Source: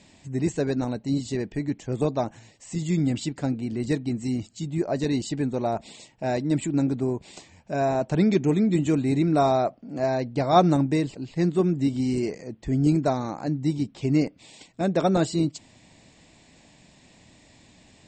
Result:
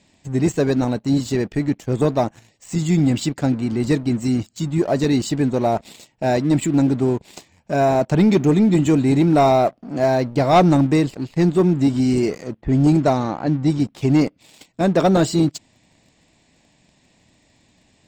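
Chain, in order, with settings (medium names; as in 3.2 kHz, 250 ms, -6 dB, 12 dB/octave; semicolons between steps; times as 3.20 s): waveshaping leveller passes 2; 12.61–13.80 s: level-controlled noise filter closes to 1.6 kHz, open at -11 dBFS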